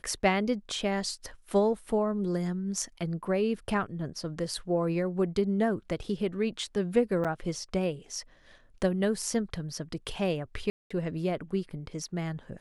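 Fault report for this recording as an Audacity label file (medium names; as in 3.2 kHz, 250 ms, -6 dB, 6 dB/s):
7.240000	7.250000	dropout 6.9 ms
10.700000	10.900000	dropout 205 ms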